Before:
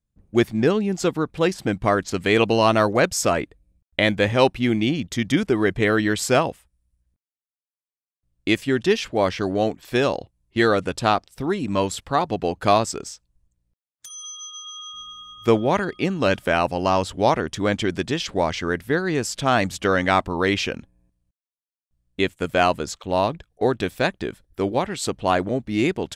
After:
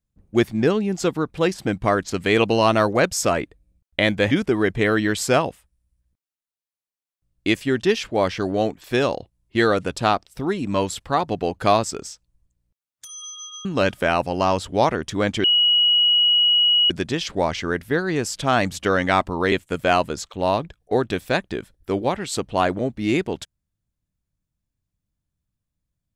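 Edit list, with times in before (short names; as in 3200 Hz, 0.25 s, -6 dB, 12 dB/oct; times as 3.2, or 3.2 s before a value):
4.31–5.32 cut
14.66–16.1 cut
17.89 add tone 2910 Hz -13.5 dBFS 1.46 s
20.51–22.22 cut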